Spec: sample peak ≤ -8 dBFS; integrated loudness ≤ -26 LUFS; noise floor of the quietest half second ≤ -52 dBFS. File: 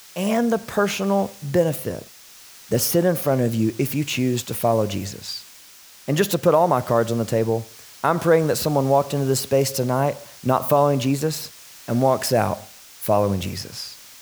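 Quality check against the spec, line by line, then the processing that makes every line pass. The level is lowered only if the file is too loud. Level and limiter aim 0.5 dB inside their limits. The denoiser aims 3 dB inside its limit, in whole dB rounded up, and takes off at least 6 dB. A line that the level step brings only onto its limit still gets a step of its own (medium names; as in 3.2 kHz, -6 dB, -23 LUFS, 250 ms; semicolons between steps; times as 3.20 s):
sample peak -5.0 dBFS: fail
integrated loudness -21.5 LUFS: fail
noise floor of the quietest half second -46 dBFS: fail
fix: noise reduction 6 dB, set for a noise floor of -46 dBFS; trim -5 dB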